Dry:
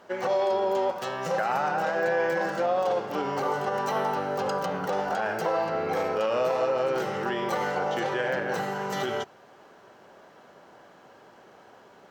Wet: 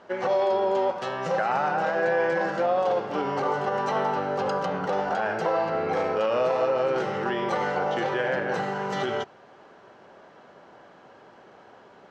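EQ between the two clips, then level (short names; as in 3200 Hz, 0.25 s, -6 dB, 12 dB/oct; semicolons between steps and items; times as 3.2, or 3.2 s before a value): air absorption 91 m; +2.0 dB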